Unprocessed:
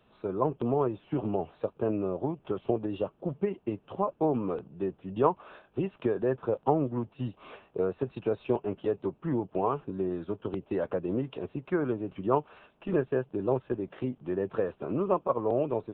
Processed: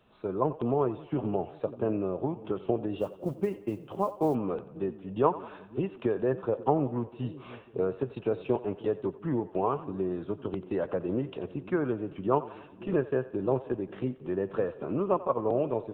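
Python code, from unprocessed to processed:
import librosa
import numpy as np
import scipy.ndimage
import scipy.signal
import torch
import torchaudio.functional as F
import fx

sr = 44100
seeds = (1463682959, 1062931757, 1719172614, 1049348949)

y = fx.echo_split(x, sr, split_hz=400.0, low_ms=539, high_ms=89, feedback_pct=52, wet_db=-16)
y = fx.mod_noise(y, sr, seeds[0], snr_db=33, at=(2.98, 4.35))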